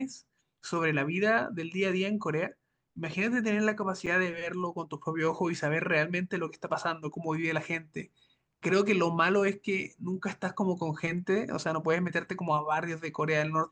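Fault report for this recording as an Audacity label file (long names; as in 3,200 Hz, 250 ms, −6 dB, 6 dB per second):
4.060000	4.070000	drop-out 6.8 ms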